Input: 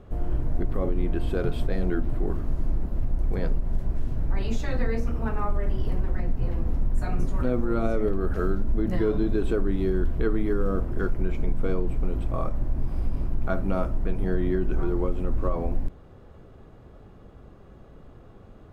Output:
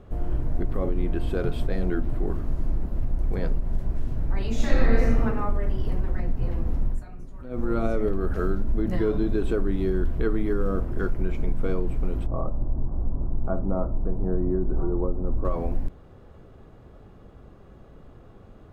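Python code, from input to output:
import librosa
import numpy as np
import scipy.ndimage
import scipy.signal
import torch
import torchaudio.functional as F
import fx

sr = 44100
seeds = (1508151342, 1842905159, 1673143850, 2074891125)

y = fx.reverb_throw(x, sr, start_s=4.52, length_s=0.68, rt60_s=1.3, drr_db=-5.0)
y = fx.lowpass(y, sr, hz=1100.0, slope=24, at=(12.26, 15.45))
y = fx.edit(y, sr, fx.fade_down_up(start_s=6.89, length_s=0.75, db=-15.0, fade_s=0.15), tone=tone)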